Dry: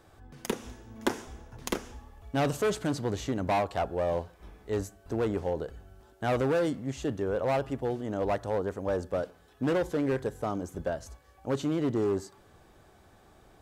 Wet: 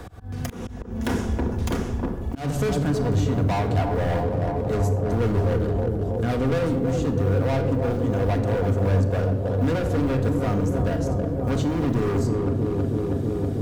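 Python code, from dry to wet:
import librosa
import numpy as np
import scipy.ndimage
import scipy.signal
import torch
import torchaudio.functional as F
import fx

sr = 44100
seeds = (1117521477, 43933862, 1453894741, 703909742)

y = fx.block_float(x, sr, bits=7)
y = fx.rotary(y, sr, hz=7.5, at=(4.23, 6.52))
y = fx.echo_wet_lowpass(y, sr, ms=321, feedback_pct=77, hz=780.0, wet_db=-6)
y = fx.rider(y, sr, range_db=4, speed_s=2.0)
y = np.clip(10.0 ** (29.0 / 20.0) * y, -1.0, 1.0) / 10.0 ** (29.0 / 20.0)
y = fx.peak_eq(y, sr, hz=81.0, db=14.0, octaves=1.6)
y = fx.room_shoebox(y, sr, seeds[0], volume_m3=2800.0, walls='furnished', distance_m=1.8)
y = fx.auto_swell(y, sr, attack_ms=260.0)
y = fx.band_squash(y, sr, depth_pct=40)
y = y * 10.0 ** (4.0 / 20.0)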